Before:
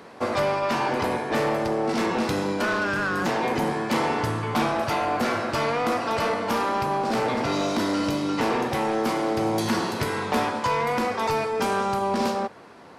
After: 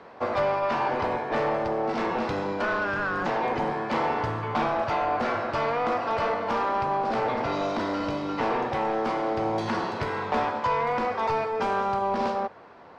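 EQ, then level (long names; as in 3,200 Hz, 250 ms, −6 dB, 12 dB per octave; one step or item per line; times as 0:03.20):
three-way crossover with the lows and the highs turned down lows −15 dB, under 520 Hz, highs −19 dB, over 6,600 Hz
spectral tilt −3.5 dB per octave
0.0 dB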